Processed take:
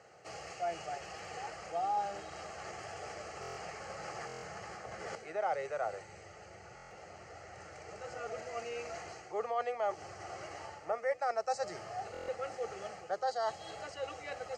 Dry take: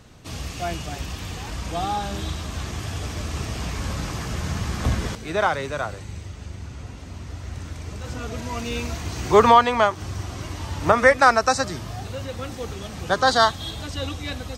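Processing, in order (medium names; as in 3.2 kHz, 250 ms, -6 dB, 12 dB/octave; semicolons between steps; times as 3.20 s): dynamic bell 1.4 kHz, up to -7 dB, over -32 dBFS, Q 1.3; reverse; compression 6:1, threshold -29 dBFS, peak gain reduction 17.5 dB; reverse; cabinet simulation 380–6100 Hz, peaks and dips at 400 Hz -3 dB, 600 Hz -3 dB, 850 Hz +7 dB, 1.6 kHz -9 dB, 2.4 kHz -7 dB, 5.7 kHz -7 dB; static phaser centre 980 Hz, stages 6; buffer glitch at 3.41/4.27/6.75/12.12 s, samples 1024, times 6; trim +1.5 dB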